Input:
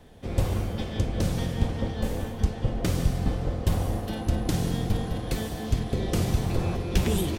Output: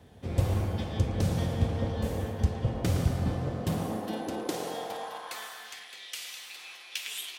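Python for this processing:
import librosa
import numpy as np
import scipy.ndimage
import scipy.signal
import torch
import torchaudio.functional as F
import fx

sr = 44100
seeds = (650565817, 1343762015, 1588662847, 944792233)

y = fx.echo_banded(x, sr, ms=113, feedback_pct=80, hz=840.0, wet_db=-3.5)
y = fx.filter_sweep_highpass(y, sr, from_hz=79.0, to_hz=2600.0, start_s=3.15, end_s=6.07, q=1.6)
y = y * 10.0 ** (-3.5 / 20.0)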